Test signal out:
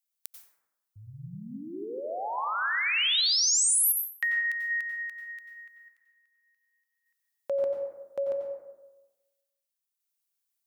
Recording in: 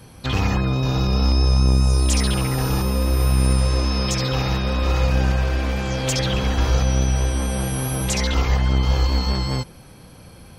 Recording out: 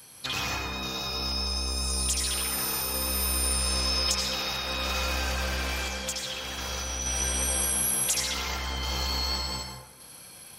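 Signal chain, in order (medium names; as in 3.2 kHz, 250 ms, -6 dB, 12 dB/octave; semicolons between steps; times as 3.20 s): tilt EQ +4 dB/octave; compression, threshold -17 dBFS; random-step tremolo 1.7 Hz; plate-style reverb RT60 1.1 s, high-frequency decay 0.4×, pre-delay 80 ms, DRR 2 dB; trim -6 dB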